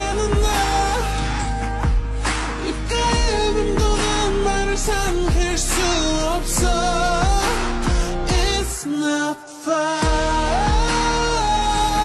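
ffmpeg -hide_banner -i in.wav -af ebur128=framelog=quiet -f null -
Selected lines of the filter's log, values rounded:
Integrated loudness:
  I:         -20.1 LUFS
  Threshold: -30.1 LUFS
Loudness range:
  LRA:         1.5 LU
  Threshold: -40.2 LUFS
  LRA low:   -21.0 LUFS
  LRA high:  -19.5 LUFS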